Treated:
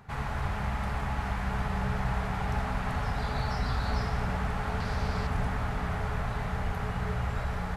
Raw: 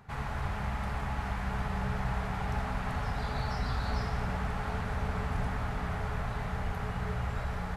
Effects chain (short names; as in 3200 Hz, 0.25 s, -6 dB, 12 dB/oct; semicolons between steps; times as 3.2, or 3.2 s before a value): 4.8–5.27 bell 4800 Hz +10.5 dB 0.59 oct; gain +2.5 dB